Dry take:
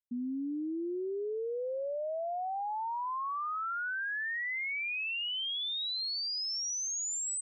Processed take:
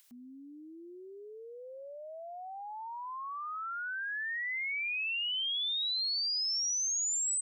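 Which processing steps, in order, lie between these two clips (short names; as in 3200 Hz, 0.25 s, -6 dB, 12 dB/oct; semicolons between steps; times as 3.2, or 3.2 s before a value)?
upward compressor, threshold -44 dBFS; tilt shelf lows -10 dB, about 910 Hz; gain -6.5 dB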